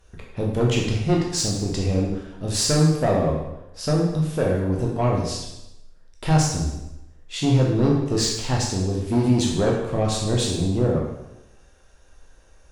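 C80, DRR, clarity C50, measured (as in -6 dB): 5.5 dB, -2.5 dB, 2.5 dB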